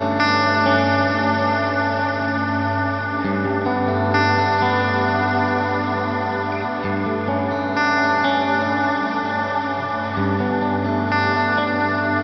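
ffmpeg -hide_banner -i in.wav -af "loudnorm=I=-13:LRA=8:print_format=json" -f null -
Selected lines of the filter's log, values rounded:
"input_i" : "-19.6",
"input_tp" : "-2.7",
"input_lra" : "1.2",
"input_thresh" : "-29.6",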